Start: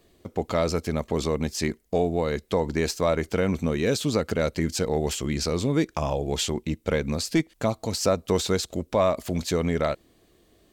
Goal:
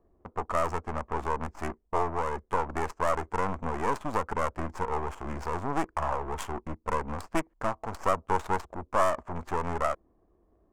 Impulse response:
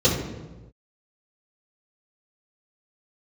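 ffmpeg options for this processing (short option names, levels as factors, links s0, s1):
-af "aeval=exprs='clip(val(0),-1,0.0211)':c=same,adynamicsmooth=sensitivity=4:basefreq=540,equalizer=f=125:t=o:w=1:g=-10,equalizer=f=250:t=o:w=1:g=-4,equalizer=f=500:t=o:w=1:g=-4,equalizer=f=1000:t=o:w=1:g=10,equalizer=f=4000:t=o:w=1:g=-12,equalizer=f=8000:t=o:w=1:g=8"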